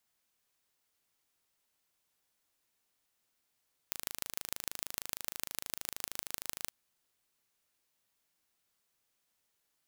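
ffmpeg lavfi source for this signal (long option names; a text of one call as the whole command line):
ffmpeg -f lavfi -i "aevalsrc='0.473*eq(mod(n,1670),0)*(0.5+0.5*eq(mod(n,6680),0))':duration=2.77:sample_rate=44100" out.wav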